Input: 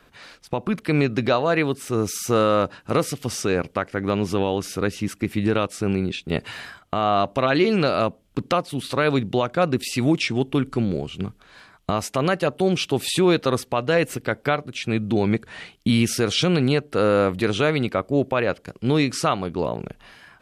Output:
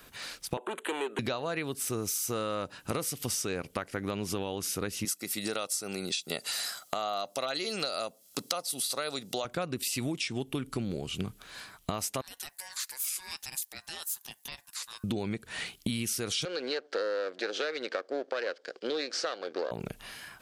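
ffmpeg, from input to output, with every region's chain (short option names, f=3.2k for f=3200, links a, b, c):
-filter_complex "[0:a]asettb=1/sr,asplit=3[a][b][c];[a]atrim=end=0.574[d];[b]atrim=start=0.57:end=1.19,asetpts=PTS-STARTPTS,afade=t=in:d=0.004:c=qsin,afade=t=out:st=0.616:d=0.004:c=qsin,volume=21.5dB,asoftclip=hard,volume=-21.5dB,asuperstop=centerf=5200:order=4:qfactor=1.1,highpass=f=360:w=0.5412,highpass=f=360:w=1.3066,equalizer=f=400:t=q:w=4:g=7,equalizer=f=920:t=q:w=4:g=7,equalizer=f=1.5k:t=q:w=4:g=3,equalizer=f=2.2k:t=q:w=4:g=-4,equalizer=f=3.3k:t=q:w=4:g=4,equalizer=f=5.4k:t=q:w=4:g=5,lowpass=f=9.4k:w=0.5412,lowpass=f=9.4k:w=1.3066[e];[c]atrim=start=1.186[f];[d][e]acrossfade=d=0.004:c1=hsin:c2=qsin[g];[g][f]acrossfade=d=0.004:c1=qsin:c2=hsin,asettb=1/sr,asplit=3[h][i][j];[h]atrim=end=5.054[k];[i]atrim=start=5.05:end=9.45,asetpts=PTS-STARTPTS,afade=t=in:d=0.004:c=qsin,afade=t=out:st=4.396:d=0.004:c=qsin,highpass=300,highshelf=f=3.6k:t=q:w=1.5:g=7.5,aecho=1:1:1.5:0.37,atrim=end_sample=194040[l];[j]atrim=start=9.446[m];[k][l]acrossfade=d=0.004:c1=hsin:c2=qsin[n];[n][m]acrossfade=d=0.004:c1=qsin:c2=hsin,asettb=1/sr,asplit=3[o][p][q];[o]atrim=end=12.214[r];[p]atrim=start=12.21:end=15.04,asetpts=PTS-STARTPTS,afade=t=in:d=0.004:c=qsin,afade=t=out:st=2.826:d=0.004:c=qsin,aderivative,acompressor=threshold=-45dB:ratio=1.5:attack=3.2:release=140:knee=1:detection=peak,aeval=exprs='val(0)*sin(2*PI*1300*n/s)':c=same[s];[q]atrim=start=15.036[t];[r][s]acrossfade=d=0.004:c1=hsin:c2=qsin[u];[u][t]acrossfade=d=0.004:c1=qsin:c2=hsin,asettb=1/sr,asplit=3[v][w][x];[v]atrim=end=16.454[y];[w]atrim=start=16.45:end=19.71,asetpts=PTS-STARTPTS,afade=t=in:d=0.004:c=qsin,afade=t=out:st=3.256:d=0.004:c=qsin,aeval=exprs='if(lt(val(0),0),0.251*val(0),val(0))':c=same,highpass=f=330:w=0.5412,highpass=f=330:w=1.3066,equalizer=f=510:t=q:w=4:g=8,equalizer=f=960:t=q:w=4:g=-6,equalizer=f=1.6k:t=q:w=4:g=8,equalizer=f=2.6k:t=q:w=4:g=-4,equalizer=f=4.6k:t=q:w=4:g=4,lowpass=f=5.7k:w=0.5412,lowpass=f=5.7k:w=1.3066[z];[x]atrim=start=19.706[aa];[y][z]acrossfade=d=0.004:c1=hsin:c2=qsin[ab];[ab][aa]acrossfade=d=0.004:c1=qsin:c2=hsin,aemphasis=mode=production:type=75kf,acompressor=threshold=-28dB:ratio=10,volume=-1.5dB"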